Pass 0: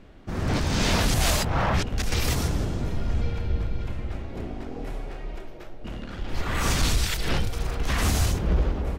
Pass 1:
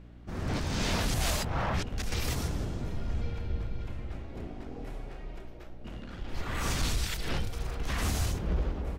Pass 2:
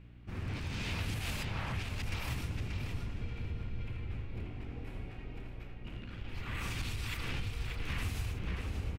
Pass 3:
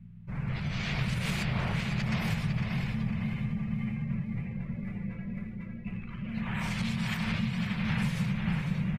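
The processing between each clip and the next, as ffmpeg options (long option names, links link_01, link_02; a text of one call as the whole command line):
ffmpeg -i in.wav -af "aeval=exprs='val(0)+0.00794*(sin(2*PI*60*n/s)+sin(2*PI*2*60*n/s)/2+sin(2*PI*3*60*n/s)/3+sin(2*PI*4*60*n/s)/4+sin(2*PI*5*60*n/s)/5)':channel_layout=same,volume=-7dB" out.wav
ffmpeg -i in.wav -filter_complex "[0:a]equalizer=frequency=100:width_type=o:width=0.67:gain=8,equalizer=frequency=630:width_type=o:width=0.67:gain=-5,equalizer=frequency=2500:width_type=o:width=0.67:gain=9,equalizer=frequency=6300:width_type=o:width=0.67:gain=-4,acompressor=threshold=-28dB:ratio=6,asplit=2[link_01][link_02];[link_02]adelay=583,lowpass=frequency=4500:poles=1,volume=-4dB,asplit=2[link_03][link_04];[link_04]adelay=583,lowpass=frequency=4500:poles=1,volume=0.25,asplit=2[link_05][link_06];[link_06]adelay=583,lowpass=frequency=4500:poles=1,volume=0.25[link_07];[link_01][link_03][link_05][link_07]amix=inputs=4:normalize=0,volume=-6dB" out.wav
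ffmpeg -i in.wav -af "afreqshift=-230,aecho=1:1:503|1006|1509|2012|2515|3018:0.473|0.232|0.114|0.0557|0.0273|0.0134,afftdn=noise_reduction=14:noise_floor=-54,volume=5dB" out.wav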